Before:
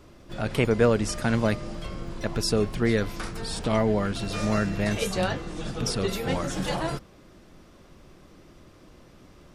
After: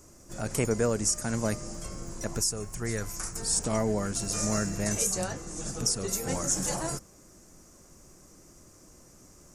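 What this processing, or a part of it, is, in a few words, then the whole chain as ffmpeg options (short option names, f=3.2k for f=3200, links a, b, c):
over-bright horn tweeter: -filter_complex "[0:a]highshelf=f=4.9k:t=q:w=3:g=12,alimiter=limit=-10.5dB:level=0:latency=1:release=451,asettb=1/sr,asplit=3[a][b][c];[a]atrim=end=2.394[d];[b]atrim=start=2.39:end=3.36,asetpts=PTS-STARTPTS,afade=t=in:d=0.004:c=qsin,afade=t=out:st=0.966:d=0.004:c=qsin,equalizer=f=250:t=o:w=1:g=-7,equalizer=f=500:t=o:w=1:g=-4,equalizer=f=4k:t=o:w=1:g=-4[e];[c]atrim=start=3.356[f];[d][e]acrossfade=d=0.004:c1=hsin:c2=qsin[g];[g][f]acrossfade=d=0.004:c1=qsin:c2=hsin,volume=-4.5dB"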